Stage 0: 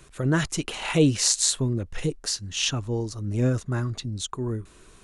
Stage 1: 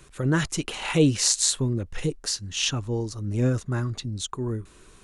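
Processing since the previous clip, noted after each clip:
notch filter 660 Hz, Q 15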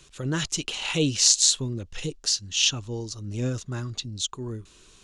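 flat-topped bell 4,400 Hz +9.5 dB
level −5 dB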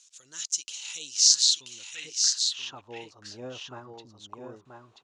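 band-pass filter sweep 6,400 Hz → 790 Hz, 0:01.13–0:02.85
on a send: single-tap delay 982 ms −5 dB
on the sum: level +2.5 dB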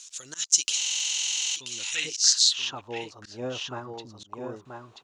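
volume swells 154 ms
speech leveller within 5 dB 0.5 s
buffer that repeats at 0:00.77, samples 2,048, times 16
level +7 dB

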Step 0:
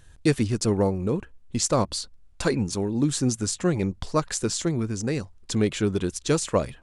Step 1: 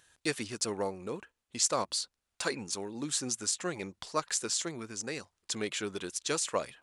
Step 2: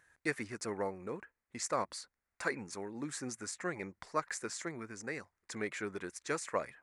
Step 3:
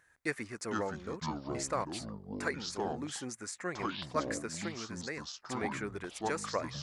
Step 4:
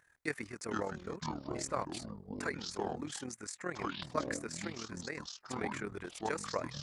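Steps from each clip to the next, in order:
high-pass filter 1,100 Hz 6 dB per octave; level −2 dB
high shelf with overshoot 2,500 Hz −7 dB, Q 3; level −3.5 dB
delay with pitch and tempo change per echo 352 ms, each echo −6 semitones, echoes 2
amplitude modulation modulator 39 Hz, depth 55%; level +1 dB

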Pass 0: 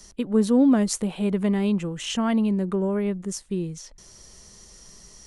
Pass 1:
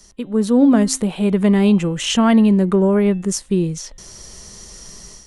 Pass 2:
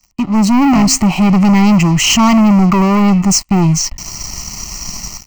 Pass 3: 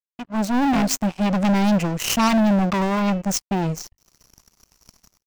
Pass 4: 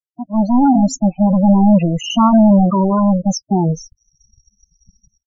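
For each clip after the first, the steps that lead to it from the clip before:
hum removal 263.5 Hz, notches 15; automatic gain control gain up to 10 dB
leveller curve on the samples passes 5; phaser with its sweep stopped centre 2,400 Hz, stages 8; level −1.5 dB
power curve on the samples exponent 3; level −1 dB
spectral peaks only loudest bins 8; level +8 dB

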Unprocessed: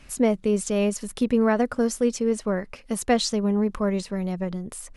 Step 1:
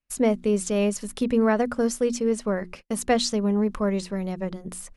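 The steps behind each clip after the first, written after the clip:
mains-hum notches 60/120/180/240/300/360 Hz
noise gate −42 dBFS, range −38 dB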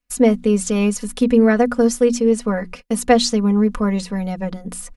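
comb filter 4.1 ms, depth 69%
level +4 dB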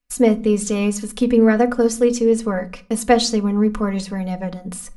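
rectangular room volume 360 cubic metres, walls furnished, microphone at 0.43 metres
level −1 dB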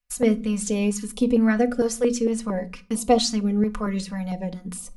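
notch on a step sequencer 4.4 Hz 300–1,700 Hz
level −3 dB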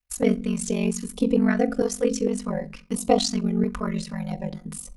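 ring modulation 23 Hz
level +1.5 dB

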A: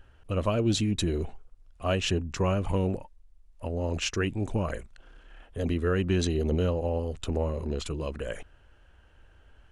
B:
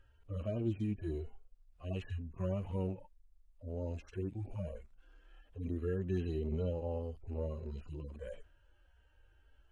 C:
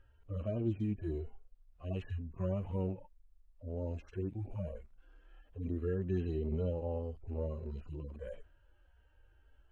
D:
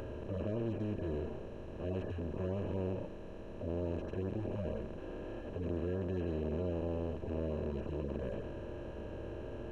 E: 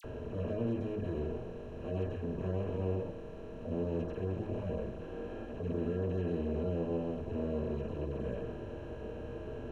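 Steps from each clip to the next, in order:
harmonic-percussive split with one part muted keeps harmonic; level −8.5 dB
high-shelf EQ 3,100 Hz −9 dB; level +1 dB
compressor on every frequency bin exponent 0.2; level −7 dB
all-pass dispersion lows, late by 44 ms, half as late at 2,100 Hz; convolution reverb RT60 0.40 s, pre-delay 3 ms, DRR 5.5 dB

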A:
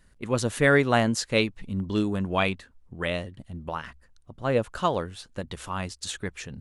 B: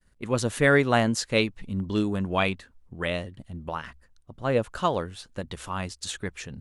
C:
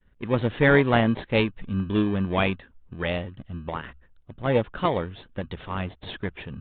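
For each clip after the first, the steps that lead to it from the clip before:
downward expander −53 dBFS
in parallel at −7.5 dB: decimation without filtering 32×; on the sum: downsampling to 8,000 Hz

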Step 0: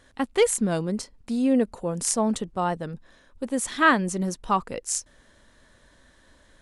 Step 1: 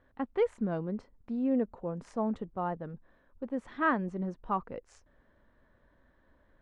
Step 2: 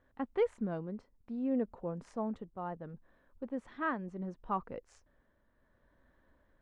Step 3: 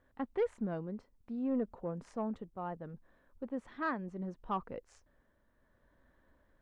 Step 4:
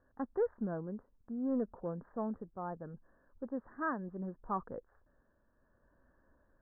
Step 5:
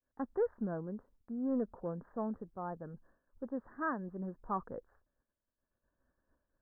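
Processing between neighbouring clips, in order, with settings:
low-pass filter 1,500 Hz 12 dB per octave; level −7.5 dB
shaped tremolo triangle 0.69 Hz, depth 50%; level −2 dB
soft clipping −24 dBFS, distortion −20 dB
Chebyshev low-pass filter 1,700 Hz, order 6
downward expander −60 dBFS

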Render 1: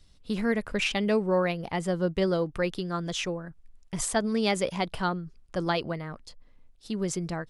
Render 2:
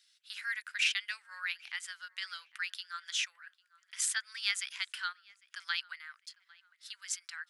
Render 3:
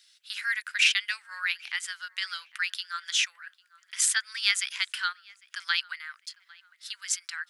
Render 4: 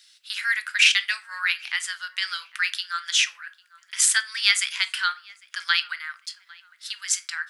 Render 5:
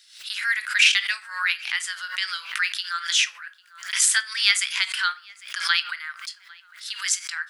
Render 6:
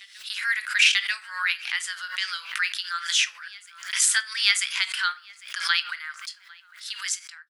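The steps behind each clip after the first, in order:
elliptic high-pass filter 1,500 Hz, stop band 80 dB; tape delay 800 ms, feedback 43%, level −22 dB, low-pass 2,200 Hz
low-shelf EQ 480 Hz −8 dB; level +8 dB
rectangular room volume 220 cubic metres, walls furnished, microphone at 0.5 metres; level +5 dB
background raised ahead of every attack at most 110 dB per second
fade-out on the ending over 0.55 s; backwards echo 941 ms −24 dB; level −1.5 dB

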